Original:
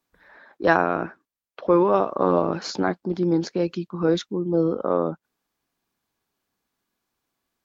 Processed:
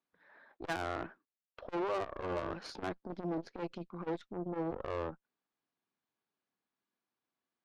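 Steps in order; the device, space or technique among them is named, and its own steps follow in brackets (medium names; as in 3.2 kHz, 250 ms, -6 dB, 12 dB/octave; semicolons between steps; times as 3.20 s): valve radio (band-pass 140–4000 Hz; valve stage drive 23 dB, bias 0.75; transformer saturation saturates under 360 Hz); trim -6.5 dB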